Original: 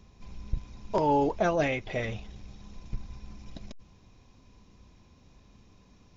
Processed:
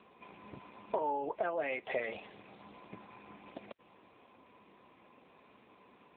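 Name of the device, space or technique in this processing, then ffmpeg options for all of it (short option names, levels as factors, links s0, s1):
voicemail: -filter_complex "[0:a]asplit=3[s0][s1][s2];[s0]afade=t=out:st=0.95:d=0.02[s3];[s1]equalizer=f=120:w=3:g=-6,afade=t=in:st=0.95:d=0.02,afade=t=out:st=2.17:d=0.02[s4];[s2]afade=t=in:st=2.17:d=0.02[s5];[s3][s4][s5]amix=inputs=3:normalize=0,highpass=430,lowpass=2800,acompressor=threshold=0.0126:ratio=10,volume=2.37" -ar 8000 -c:a libopencore_amrnb -b:a 7950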